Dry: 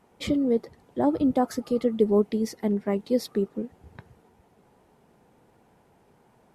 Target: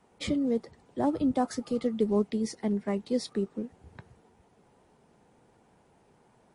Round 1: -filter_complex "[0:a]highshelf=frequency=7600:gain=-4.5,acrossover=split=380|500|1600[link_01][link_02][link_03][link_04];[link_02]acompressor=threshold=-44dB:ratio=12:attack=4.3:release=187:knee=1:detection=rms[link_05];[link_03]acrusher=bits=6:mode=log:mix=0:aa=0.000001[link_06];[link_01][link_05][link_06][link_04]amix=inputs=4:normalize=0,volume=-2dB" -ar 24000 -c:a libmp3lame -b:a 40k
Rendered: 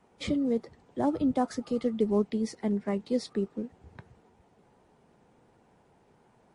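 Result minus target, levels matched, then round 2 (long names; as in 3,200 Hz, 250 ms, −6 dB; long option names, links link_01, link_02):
8,000 Hz band −3.5 dB
-filter_complex "[0:a]highshelf=frequency=7600:gain=3.5,acrossover=split=380|500|1600[link_01][link_02][link_03][link_04];[link_02]acompressor=threshold=-44dB:ratio=12:attack=4.3:release=187:knee=1:detection=rms[link_05];[link_03]acrusher=bits=6:mode=log:mix=0:aa=0.000001[link_06];[link_01][link_05][link_06][link_04]amix=inputs=4:normalize=0,volume=-2dB" -ar 24000 -c:a libmp3lame -b:a 40k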